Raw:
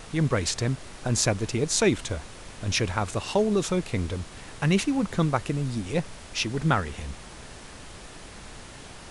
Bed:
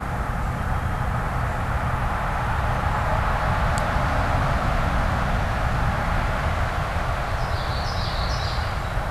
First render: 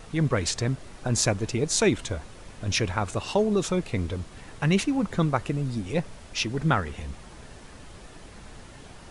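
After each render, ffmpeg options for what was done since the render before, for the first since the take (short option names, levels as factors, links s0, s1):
-af "afftdn=nr=6:nf=-44"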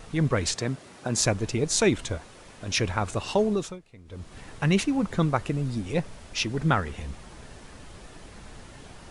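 -filter_complex "[0:a]asettb=1/sr,asplit=3[s0][s1][s2];[s0]atrim=end=0.554[s3];[s1]atrim=start=0.55:end=1.2,asetpts=PTS-STARTPTS,afade=t=in:d=0.004:c=qsin,afade=t=out:st=0.646:d=0.004:c=qsin,highpass=150[s4];[s2]atrim=start=1.196[s5];[s3][s4]acrossfade=d=0.004:c1=hsin:c2=qsin[s6];[s6][s5]acrossfade=d=0.004:c1=qsin:c2=hsin,asettb=1/sr,asplit=3[s7][s8][s9];[s7]atrim=end=2.174[s10];[s8]atrim=start=2.17:end=2.78,asetpts=PTS-STARTPTS,afade=t=in:d=0.004:c=qsin,afade=t=out:st=0.606:d=0.004:c=qsin,lowshelf=f=150:g=-10[s11];[s9]atrim=start=2.776[s12];[s10][s11]acrossfade=d=0.004:c1=hsin:c2=qsin[s13];[s13][s12]acrossfade=d=0.004:c1=qsin:c2=hsin,asplit=3[s14][s15][s16];[s14]atrim=end=3.79,asetpts=PTS-STARTPTS,afade=t=out:st=3.47:d=0.32:silence=0.0794328[s17];[s15]atrim=start=3.79:end=4.05,asetpts=PTS-STARTPTS,volume=0.0794[s18];[s16]atrim=start=4.05,asetpts=PTS-STARTPTS,afade=t=in:d=0.32:silence=0.0794328[s19];[s17][s18][s19]concat=n=3:v=0:a=1"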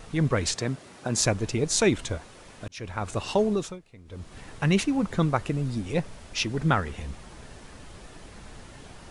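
-filter_complex "[0:a]asplit=2[s0][s1];[s0]atrim=end=2.68,asetpts=PTS-STARTPTS,afade=t=out:st=2.676:d=0.004:c=hsin[s2];[s1]atrim=start=2.68,asetpts=PTS-STARTPTS,afade=t=in:d=0.51[s3];[s2][s3]concat=n=2:v=0:a=1"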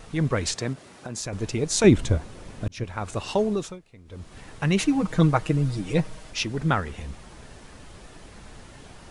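-filter_complex "[0:a]asettb=1/sr,asplit=3[s0][s1][s2];[s0]atrim=end=0.734[s3];[s1]atrim=start=0.73:end=1.33,asetpts=PTS-STARTPTS,afade=t=in:d=0.004:c=qsin,afade=t=out:st=0.596:d=0.004:c=qsin,acompressor=threshold=0.0224:ratio=2.5:attack=3.2:release=140:knee=1:detection=peak[s4];[s2]atrim=start=1.326[s5];[s3][s4]acrossfade=d=0.004:c1=hsin:c2=qsin[s6];[s6][s5]acrossfade=d=0.004:c1=qsin:c2=hsin,asettb=1/sr,asplit=3[s7][s8][s9];[s7]atrim=end=1.844[s10];[s8]atrim=start=1.84:end=2.84,asetpts=PTS-STARTPTS,afade=t=in:d=0.004:c=qsin,afade=t=out:st=0.996:d=0.004:c=qsin,lowshelf=f=410:g=11.5[s11];[s9]atrim=start=2.836[s12];[s10][s11]acrossfade=d=0.004:c1=hsin:c2=qsin[s13];[s13][s12]acrossfade=d=0.004:c1=qsin:c2=hsin,asettb=1/sr,asplit=3[s14][s15][s16];[s14]atrim=end=4.794[s17];[s15]atrim=start=4.79:end=6.31,asetpts=PTS-STARTPTS,afade=t=in:d=0.004:c=qsin,afade=t=out:st=1.516:d=0.004:c=qsin,aecho=1:1:6.4:0.95,atrim=end_sample=67032[s18];[s16]atrim=start=6.306[s19];[s17][s18]acrossfade=d=0.004:c1=hsin:c2=qsin[s20];[s20][s19]acrossfade=d=0.004:c1=qsin:c2=hsin"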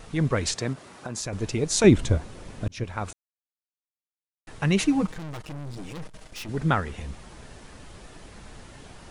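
-filter_complex "[0:a]asettb=1/sr,asplit=3[s0][s1][s2];[s0]atrim=end=0.694[s3];[s1]atrim=start=0.69:end=1.21,asetpts=PTS-STARTPTS,afade=t=in:d=0.004:c=qsin,afade=t=out:st=0.516:d=0.004:c=qsin,equalizer=f=1100:w=1.5:g=4.5[s4];[s2]atrim=start=1.206[s5];[s3][s4]acrossfade=d=0.004:c1=hsin:c2=qsin[s6];[s6][s5]acrossfade=d=0.004:c1=qsin:c2=hsin,asettb=1/sr,asplit=3[s7][s8][s9];[s7]atrim=end=5.064[s10];[s8]atrim=start=5.06:end=6.49,asetpts=PTS-STARTPTS,afade=t=in:d=0.004:c=qsin,afade=t=out:st=1.426:d=0.004:c=qsin,aeval=exprs='(tanh(56.2*val(0)+0.8)-tanh(0.8))/56.2':c=same[s11];[s9]atrim=start=6.486[s12];[s10][s11]acrossfade=d=0.004:c1=hsin:c2=qsin[s13];[s13][s12]acrossfade=d=0.004:c1=qsin:c2=hsin,asplit=3[s14][s15][s16];[s14]atrim=end=3.13,asetpts=PTS-STARTPTS,afade=t=out:st=3.126:d=0.004:c=hsin[s17];[s15]atrim=start=3.13:end=4.47,asetpts=PTS-STARTPTS,volume=0[s18];[s16]atrim=start=4.47,asetpts=PTS-STARTPTS,afade=t=in:d=0.004:c=hsin[s19];[s17][s18][s19]concat=n=3:v=0:a=1"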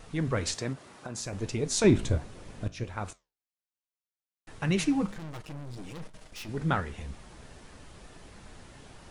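-af "flanger=delay=10:depth=9.5:regen=-73:speed=1.3:shape=sinusoidal,asoftclip=type=tanh:threshold=0.355"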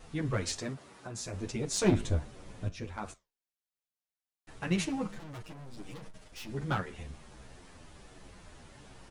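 -filter_complex "[0:a]aeval=exprs='clip(val(0),-1,0.075)':c=same,asplit=2[s0][s1];[s1]adelay=9.7,afreqshift=-1.4[s2];[s0][s2]amix=inputs=2:normalize=1"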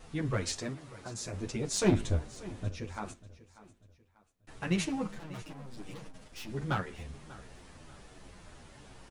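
-af "aecho=1:1:591|1182|1773:0.119|0.0452|0.0172"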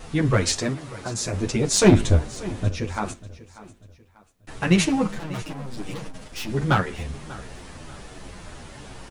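-af "volume=3.98,alimiter=limit=0.891:level=0:latency=1"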